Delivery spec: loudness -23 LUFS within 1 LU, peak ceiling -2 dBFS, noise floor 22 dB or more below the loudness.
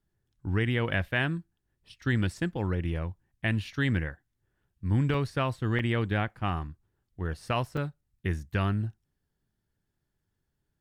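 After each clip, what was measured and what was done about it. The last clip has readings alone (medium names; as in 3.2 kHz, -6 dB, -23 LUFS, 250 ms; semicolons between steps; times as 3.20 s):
dropouts 3; longest dropout 3.3 ms; loudness -30.5 LUFS; peak level -14.5 dBFS; loudness target -23.0 LUFS
-> interpolate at 5.14/5.79/7.77 s, 3.3 ms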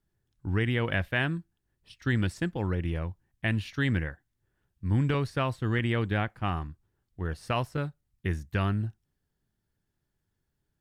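dropouts 0; loudness -30.5 LUFS; peak level -14.5 dBFS; loudness target -23.0 LUFS
-> trim +7.5 dB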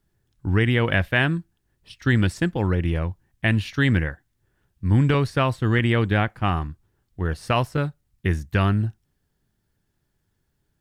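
loudness -23.0 LUFS; peak level -7.0 dBFS; noise floor -73 dBFS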